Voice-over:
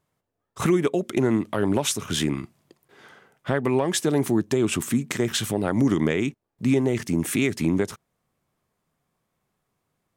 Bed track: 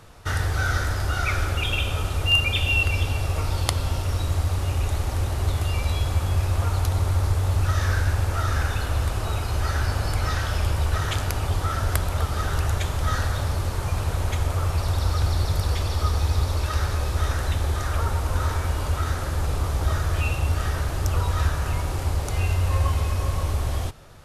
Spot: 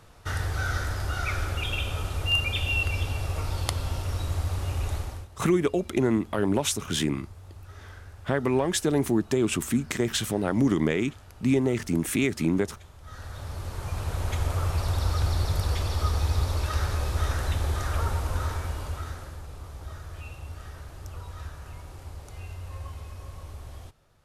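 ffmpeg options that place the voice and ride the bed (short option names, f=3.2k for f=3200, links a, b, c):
-filter_complex "[0:a]adelay=4800,volume=-2dB[a];[1:a]volume=15.5dB,afade=t=out:st=4.94:d=0.34:silence=0.11885,afade=t=in:st=13.03:d=1.43:silence=0.0944061,afade=t=out:st=18.06:d=1.38:silence=0.211349[b];[a][b]amix=inputs=2:normalize=0"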